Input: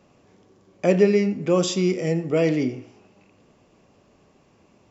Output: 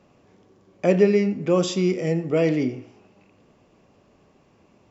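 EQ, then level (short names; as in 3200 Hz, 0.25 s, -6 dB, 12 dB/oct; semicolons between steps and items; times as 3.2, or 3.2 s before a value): high shelf 6300 Hz -7 dB; 0.0 dB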